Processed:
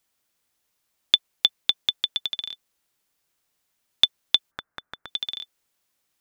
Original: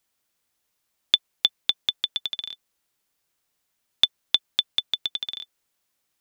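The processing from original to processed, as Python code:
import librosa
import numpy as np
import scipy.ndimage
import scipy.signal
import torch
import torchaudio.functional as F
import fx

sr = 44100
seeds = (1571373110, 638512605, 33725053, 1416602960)

y = fx.high_shelf_res(x, sr, hz=2200.0, db=-13.0, q=3.0, at=(4.5, 5.07), fade=0.02)
y = y * librosa.db_to_amplitude(1.0)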